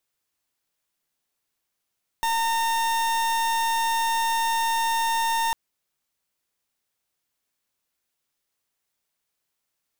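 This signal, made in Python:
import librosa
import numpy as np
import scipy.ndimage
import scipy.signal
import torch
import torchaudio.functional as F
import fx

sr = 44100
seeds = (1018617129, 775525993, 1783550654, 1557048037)

y = fx.pulse(sr, length_s=3.3, hz=913.0, level_db=-23.5, duty_pct=39)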